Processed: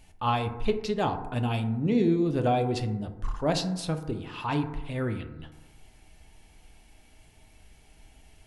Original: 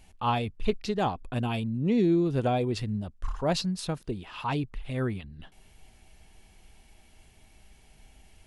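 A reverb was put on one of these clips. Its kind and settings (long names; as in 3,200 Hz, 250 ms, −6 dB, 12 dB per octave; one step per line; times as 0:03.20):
feedback delay network reverb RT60 1.1 s, low-frequency decay 0.95×, high-frequency decay 0.3×, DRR 6 dB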